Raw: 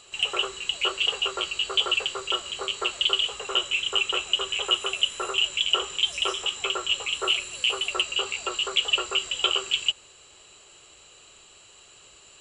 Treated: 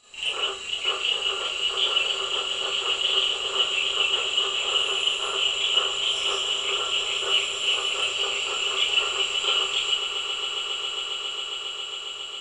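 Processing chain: swelling echo 0.136 s, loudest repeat 8, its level -14 dB; Schroeder reverb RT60 0.37 s, combs from 26 ms, DRR -8 dB; gain -9 dB

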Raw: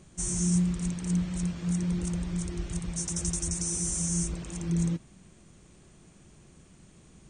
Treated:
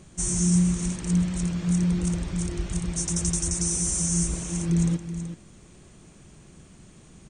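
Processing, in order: echo 0.378 s -10 dB; gain +4.5 dB

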